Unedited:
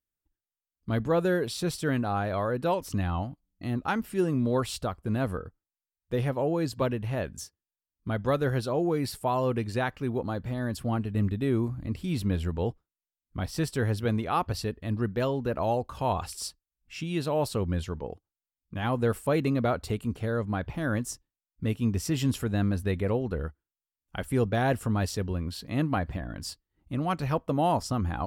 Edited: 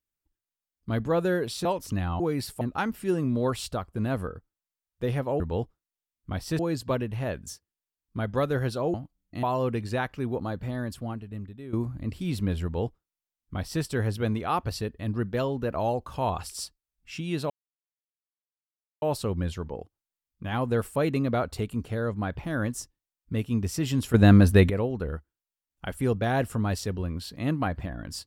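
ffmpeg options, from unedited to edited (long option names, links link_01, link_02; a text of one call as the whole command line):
ffmpeg -i in.wav -filter_complex "[0:a]asplit=12[link_01][link_02][link_03][link_04][link_05][link_06][link_07][link_08][link_09][link_10][link_11][link_12];[link_01]atrim=end=1.652[link_13];[link_02]atrim=start=2.668:end=3.222[link_14];[link_03]atrim=start=8.848:end=9.262[link_15];[link_04]atrim=start=3.708:end=6.502[link_16];[link_05]atrim=start=12.468:end=13.662[link_17];[link_06]atrim=start=6.498:end=8.852[link_18];[link_07]atrim=start=3.218:end=3.712[link_19];[link_08]atrim=start=9.258:end=11.56,asetpts=PTS-STARTPTS,afade=type=out:start_time=1.312:duration=0.99:curve=qua:silence=0.188365[link_20];[link_09]atrim=start=11.56:end=17.33,asetpts=PTS-STARTPTS,afade=type=in:duration=0.004:curve=hsin:silence=0.188365,afade=type=out:start_time=5.766:duration=0.004:curve=hsin,apad=pad_dur=1.52[link_21];[link_10]atrim=start=17.33:end=22.452,asetpts=PTS-STARTPTS,afade=type=in:duration=0.004:curve=hsin[link_22];[link_11]atrim=start=22.448:end=23.012,asetpts=PTS-STARTPTS,volume=11dB[link_23];[link_12]atrim=start=23.008[link_24];[link_13][link_14]acrossfade=duration=0.004:curve1=hsin:curve2=hsin[link_25];[link_25][link_15]acrossfade=duration=0.004:curve1=hsin:curve2=hsin[link_26];[link_26][link_16]acrossfade=duration=0.004:curve1=hsin:curve2=hsin[link_27];[link_27][link_17]acrossfade=duration=0.004:curve1=hsin:curve2=hsin[link_28];[link_28][link_18]acrossfade=duration=0.004:curve1=hsin:curve2=hsin[link_29];[link_29][link_19]acrossfade=duration=0.004:curve1=hsin:curve2=hsin[link_30];[link_20][link_21][link_22]concat=n=3:v=0:a=1[link_31];[link_30][link_31]acrossfade=duration=0.004:curve1=hsin:curve2=hsin[link_32];[link_32][link_23]acrossfade=duration=0.004:curve1=hsin:curve2=hsin[link_33];[link_33][link_24]acrossfade=duration=0.004:curve1=hsin:curve2=hsin" out.wav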